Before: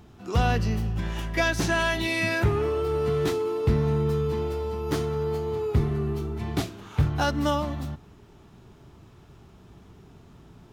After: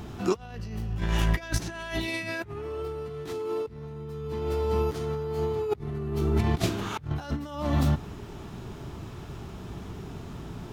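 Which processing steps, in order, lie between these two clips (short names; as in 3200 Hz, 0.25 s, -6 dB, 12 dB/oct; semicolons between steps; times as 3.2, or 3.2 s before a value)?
negative-ratio compressor -32 dBFS, ratio -0.5; gain +4 dB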